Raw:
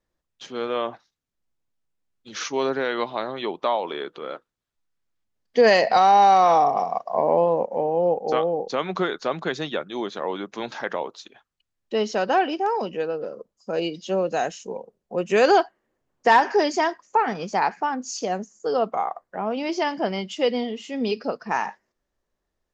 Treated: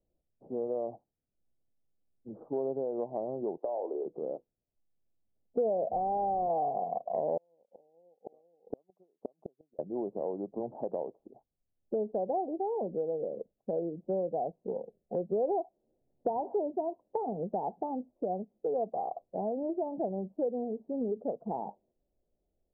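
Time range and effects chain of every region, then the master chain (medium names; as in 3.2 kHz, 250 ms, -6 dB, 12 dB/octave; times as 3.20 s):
3.57–4.06 s: high-pass 330 Hz 24 dB/octave + doubling 30 ms -12 dB + compression 10:1, threshold -23 dBFS
5.91–6.50 s: block-companded coder 3-bit + peaking EQ 1.3 kHz -5.5 dB 1.9 oct + decimation joined by straight lines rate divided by 2×
7.37–9.79 s: transient shaper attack +8 dB, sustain -4 dB + inverted gate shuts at -17 dBFS, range -42 dB + bass shelf 170 Hz -10.5 dB
whole clip: steep low-pass 750 Hz 48 dB/octave; dynamic bell 260 Hz, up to -4 dB, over -35 dBFS, Q 1.4; compression 3:1, threshold -31 dBFS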